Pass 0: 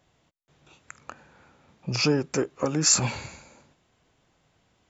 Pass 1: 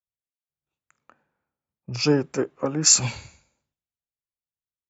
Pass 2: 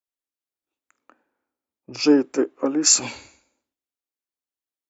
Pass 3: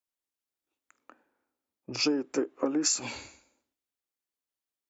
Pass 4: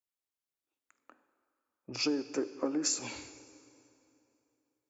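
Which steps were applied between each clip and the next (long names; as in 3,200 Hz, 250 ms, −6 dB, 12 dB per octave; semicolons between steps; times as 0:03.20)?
multiband upward and downward expander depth 100%; level −4.5 dB
low shelf with overshoot 210 Hz −9.5 dB, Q 3
downward compressor 12 to 1, threshold −24 dBFS, peak gain reduction 14.5 dB
dense smooth reverb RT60 3 s, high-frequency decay 0.75×, DRR 13.5 dB; level −4.5 dB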